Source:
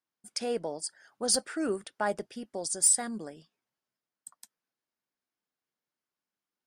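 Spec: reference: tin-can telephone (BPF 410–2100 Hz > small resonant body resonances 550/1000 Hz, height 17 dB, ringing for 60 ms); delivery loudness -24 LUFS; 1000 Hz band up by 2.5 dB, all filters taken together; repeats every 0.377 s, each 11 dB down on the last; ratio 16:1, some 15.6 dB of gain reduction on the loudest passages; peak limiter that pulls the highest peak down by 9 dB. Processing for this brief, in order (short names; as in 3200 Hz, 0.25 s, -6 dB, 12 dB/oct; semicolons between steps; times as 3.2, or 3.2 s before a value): bell 1000 Hz +4 dB; compressor 16:1, threshold -34 dBFS; limiter -29.5 dBFS; BPF 410–2100 Hz; feedback echo 0.377 s, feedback 28%, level -11 dB; small resonant body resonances 550/1000 Hz, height 17 dB, ringing for 60 ms; gain +14.5 dB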